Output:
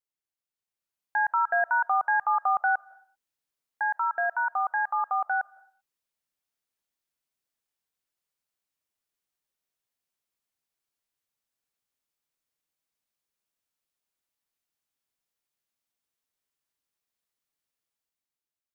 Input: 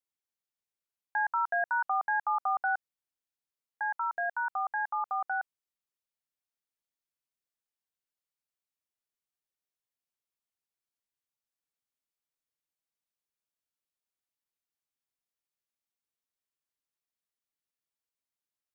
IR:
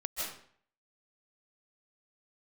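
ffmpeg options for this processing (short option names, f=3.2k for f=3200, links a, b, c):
-filter_complex "[0:a]dynaudnorm=f=250:g=7:m=8dB,asplit=2[a][b];[1:a]atrim=start_sample=2205,afade=t=out:st=0.45:d=0.01,atrim=end_sample=20286[c];[b][c]afir=irnorm=-1:irlink=0,volume=-24dB[d];[a][d]amix=inputs=2:normalize=0,volume=-3.5dB"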